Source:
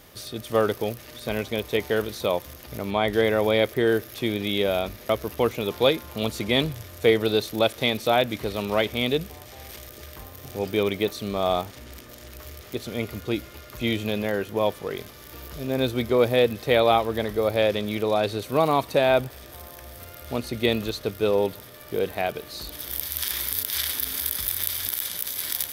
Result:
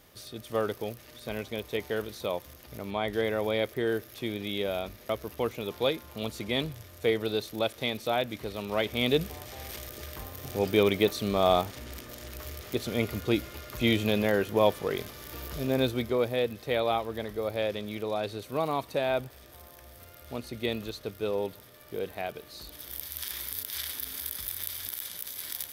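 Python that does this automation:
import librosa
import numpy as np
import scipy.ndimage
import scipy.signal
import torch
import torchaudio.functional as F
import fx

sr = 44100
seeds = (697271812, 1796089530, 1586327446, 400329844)

y = fx.gain(x, sr, db=fx.line((8.66, -7.5), (9.24, 0.5), (15.61, 0.5), (16.29, -8.5)))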